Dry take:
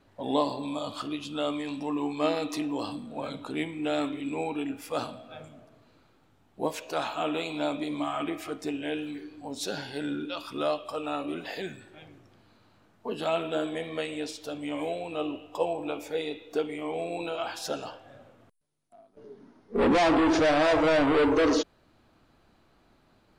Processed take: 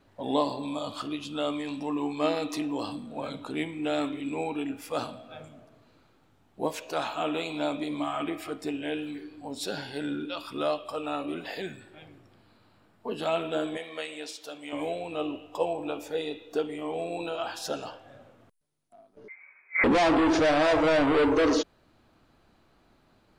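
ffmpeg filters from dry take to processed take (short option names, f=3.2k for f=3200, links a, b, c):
-filter_complex "[0:a]asettb=1/sr,asplit=3[a][b][c];[a]atrim=end=7.864[d];[b]atrim=start=7.86:end=13.15,asetpts=PTS-STARTPTS,afade=t=in:d=0.004:c=qsin,afade=t=out:st=5.286:d=0.004:c=qsin,bandreject=f=6.2k:w=6.2[e];[c]atrim=start=13.146[f];[d][e]acrossfade=d=0.004:c1=hsin:c2=qsin[g];[g][f]acrossfade=d=0.004:c1=qsin:c2=hsin,asettb=1/sr,asplit=3[h][i][j];[h]atrim=end=13.774[k];[i]atrim=start=13.77:end=14.73,asetpts=PTS-STARTPTS,afade=t=in:d=0.004:c=qsin,afade=t=out:st=0.956:d=0.004:c=qsin,highpass=f=740:p=1[l];[j]atrim=start=14.726[m];[k][l]acrossfade=d=0.004:c1=hsin:c2=qsin[n];[n][m]acrossfade=d=0.004:c1=qsin:c2=hsin,asettb=1/sr,asplit=3[o][p][q];[o]atrim=end=15.874[r];[p]atrim=start=15.87:end=17.74,asetpts=PTS-STARTPTS,afade=t=in:d=0.004:c=qsin,afade=t=out:st=1.866:d=0.004:c=qsin,bandreject=f=2.2k:w=7.2[s];[q]atrim=start=17.736[t];[r][s]acrossfade=d=0.004:c1=hsin:c2=qsin[u];[u][t]acrossfade=d=0.004:c1=qsin:c2=hsin,asettb=1/sr,asplit=3[v][w][x];[v]atrim=end=19.284[y];[w]atrim=start=19.28:end=19.84,asetpts=PTS-STARTPTS,afade=t=in:d=0.004:c=qsin,afade=t=out:st=0.556:d=0.004:c=qsin,lowpass=f=2.1k:t=q:w=0.5098,lowpass=f=2.1k:t=q:w=0.6013,lowpass=f=2.1k:t=q:w=0.9,lowpass=f=2.1k:t=q:w=2.563,afreqshift=-2500[z];[x]atrim=start=19.836[aa];[y][z]acrossfade=d=0.004:c1=hsin:c2=qsin[ab];[ab][aa]acrossfade=d=0.004:c1=qsin:c2=hsin"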